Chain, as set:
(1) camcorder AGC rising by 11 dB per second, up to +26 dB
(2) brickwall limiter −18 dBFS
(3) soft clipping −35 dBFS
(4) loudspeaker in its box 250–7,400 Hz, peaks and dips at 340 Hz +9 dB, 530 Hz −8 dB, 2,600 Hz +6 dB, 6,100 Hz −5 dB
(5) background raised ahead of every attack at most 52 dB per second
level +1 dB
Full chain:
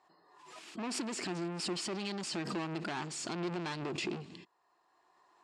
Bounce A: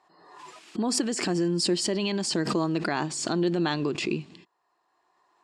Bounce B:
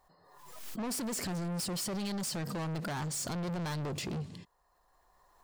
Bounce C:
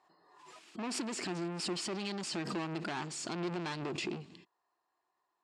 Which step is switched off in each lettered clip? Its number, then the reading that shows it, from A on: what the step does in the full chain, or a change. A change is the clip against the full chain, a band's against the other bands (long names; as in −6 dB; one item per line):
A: 3, distortion level −6 dB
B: 4, 125 Hz band +7.0 dB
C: 1, change in momentary loudness spread −2 LU